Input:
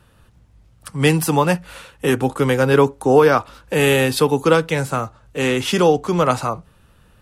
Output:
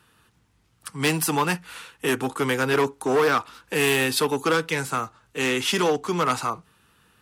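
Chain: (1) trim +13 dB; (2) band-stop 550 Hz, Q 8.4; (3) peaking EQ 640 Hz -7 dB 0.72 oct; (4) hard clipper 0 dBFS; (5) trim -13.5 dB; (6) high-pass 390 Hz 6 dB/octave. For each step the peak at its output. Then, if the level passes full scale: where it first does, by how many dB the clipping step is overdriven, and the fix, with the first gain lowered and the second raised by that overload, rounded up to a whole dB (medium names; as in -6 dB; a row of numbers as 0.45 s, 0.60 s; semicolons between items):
+11.0 dBFS, +11.0 dBFS, +9.5 dBFS, 0.0 dBFS, -13.5 dBFS, -9.5 dBFS; step 1, 9.5 dB; step 1 +3 dB, step 5 -3.5 dB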